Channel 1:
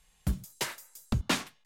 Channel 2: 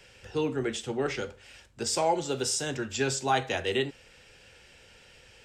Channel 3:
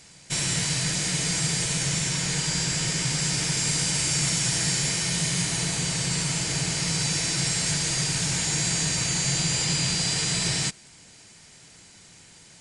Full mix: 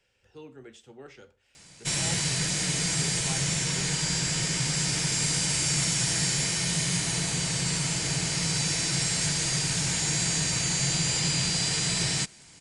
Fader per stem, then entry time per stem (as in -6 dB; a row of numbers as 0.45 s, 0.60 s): mute, -17.0 dB, -1.5 dB; mute, 0.00 s, 1.55 s